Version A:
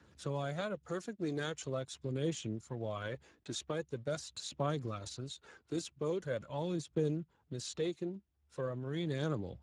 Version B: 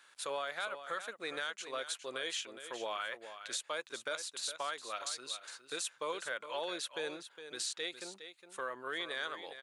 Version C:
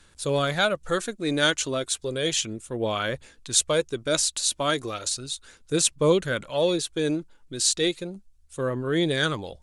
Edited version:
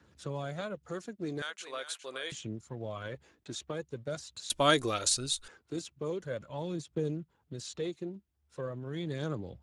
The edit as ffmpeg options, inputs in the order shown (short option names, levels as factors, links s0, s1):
-filter_complex "[0:a]asplit=3[s0][s1][s2];[s0]atrim=end=1.422[s3];[1:a]atrim=start=1.418:end=2.322[s4];[s1]atrim=start=2.318:end=4.502[s5];[2:a]atrim=start=4.498:end=5.482[s6];[s2]atrim=start=5.478[s7];[s3][s4]acrossfade=d=0.004:c1=hsin:c2=hsin[s8];[s8][s5]acrossfade=d=0.004:c1=hsin:c2=hsin[s9];[s9][s6]acrossfade=d=0.004:c1=hsin:c2=hsin[s10];[s10][s7]acrossfade=d=0.004:c1=hsin:c2=hsin"